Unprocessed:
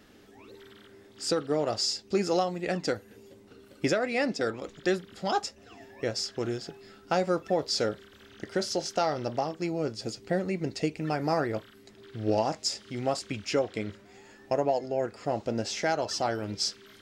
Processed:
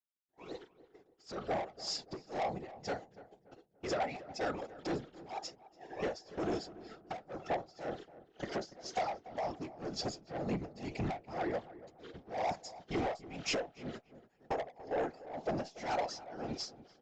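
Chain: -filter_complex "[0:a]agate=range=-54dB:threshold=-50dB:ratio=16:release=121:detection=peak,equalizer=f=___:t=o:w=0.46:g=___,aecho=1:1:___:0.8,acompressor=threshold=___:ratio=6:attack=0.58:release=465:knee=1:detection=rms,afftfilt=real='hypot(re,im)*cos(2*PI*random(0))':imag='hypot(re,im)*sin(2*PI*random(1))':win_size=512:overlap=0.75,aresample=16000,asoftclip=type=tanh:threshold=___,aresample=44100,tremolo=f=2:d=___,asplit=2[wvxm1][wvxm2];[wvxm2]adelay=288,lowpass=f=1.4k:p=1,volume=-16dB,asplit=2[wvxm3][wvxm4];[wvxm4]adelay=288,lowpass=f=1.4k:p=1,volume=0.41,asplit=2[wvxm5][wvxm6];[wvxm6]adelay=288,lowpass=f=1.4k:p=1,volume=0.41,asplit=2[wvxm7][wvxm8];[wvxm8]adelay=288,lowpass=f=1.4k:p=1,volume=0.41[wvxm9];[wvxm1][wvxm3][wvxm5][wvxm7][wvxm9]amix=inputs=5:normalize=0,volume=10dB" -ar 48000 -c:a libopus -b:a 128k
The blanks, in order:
720, 13.5, 5.4, -25dB, -38.5dB, 0.98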